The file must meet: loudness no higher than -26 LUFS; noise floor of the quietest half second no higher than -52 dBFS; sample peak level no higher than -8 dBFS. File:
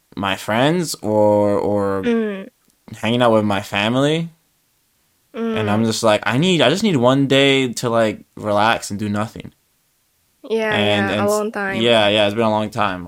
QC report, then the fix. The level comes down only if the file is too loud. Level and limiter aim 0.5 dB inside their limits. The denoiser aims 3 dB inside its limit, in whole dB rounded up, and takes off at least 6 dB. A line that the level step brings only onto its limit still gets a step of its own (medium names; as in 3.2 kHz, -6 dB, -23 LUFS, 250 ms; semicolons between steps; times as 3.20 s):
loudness -17.5 LUFS: fail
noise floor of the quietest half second -63 dBFS: pass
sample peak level -1.5 dBFS: fail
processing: trim -9 dB